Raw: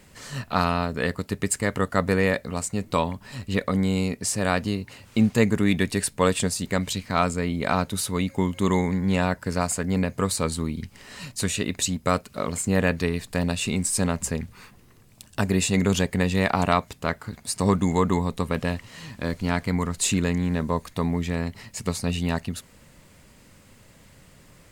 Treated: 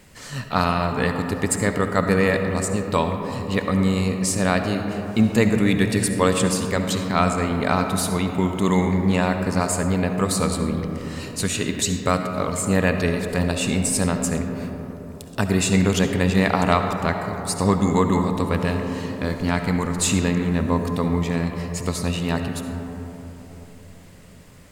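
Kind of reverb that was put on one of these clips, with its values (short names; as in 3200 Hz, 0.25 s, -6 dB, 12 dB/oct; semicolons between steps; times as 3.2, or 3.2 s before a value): digital reverb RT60 4.1 s, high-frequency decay 0.25×, pre-delay 30 ms, DRR 5 dB; gain +2 dB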